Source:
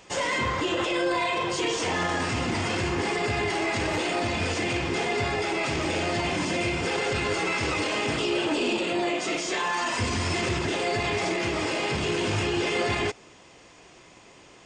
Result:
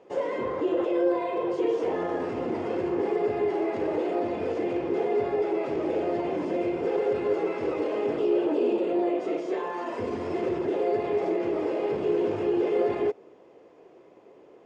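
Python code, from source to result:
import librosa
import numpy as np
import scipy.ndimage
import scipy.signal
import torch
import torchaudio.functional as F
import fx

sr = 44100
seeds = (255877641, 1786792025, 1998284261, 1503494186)

y = fx.bandpass_q(x, sr, hz=440.0, q=2.3)
y = y * librosa.db_to_amplitude(6.0)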